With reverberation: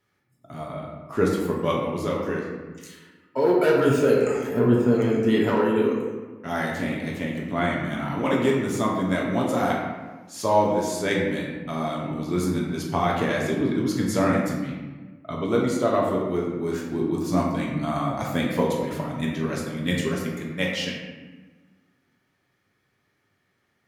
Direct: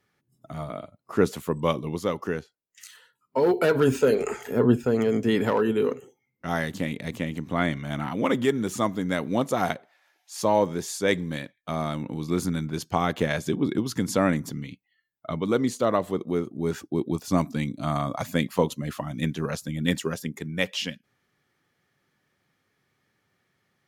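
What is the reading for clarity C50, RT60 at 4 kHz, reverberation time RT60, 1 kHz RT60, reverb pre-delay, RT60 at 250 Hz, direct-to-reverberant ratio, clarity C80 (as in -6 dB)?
1.5 dB, 0.80 s, 1.3 s, 1.3 s, 3 ms, 1.8 s, -3.5 dB, 3.5 dB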